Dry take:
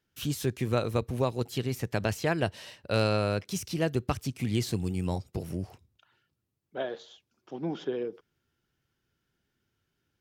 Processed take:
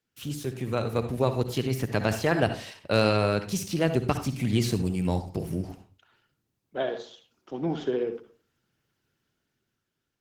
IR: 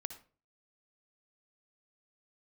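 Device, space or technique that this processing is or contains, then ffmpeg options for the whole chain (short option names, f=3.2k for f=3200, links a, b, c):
far-field microphone of a smart speaker: -filter_complex "[0:a]asplit=3[a][b][c];[a]afade=t=out:st=1.32:d=0.02[d];[b]bandreject=f=7.9k:w=10,afade=t=in:st=1.32:d=0.02,afade=t=out:st=2.01:d=0.02[e];[c]afade=t=in:st=2.01:d=0.02[f];[d][e][f]amix=inputs=3:normalize=0[g];[1:a]atrim=start_sample=2205[h];[g][h]afir=irnorm=-1:irlink=0,highpass=94,dynaudnorm=f=150:g=13:m=7dB" -ar 48000 -c:a libopus -b:a 16k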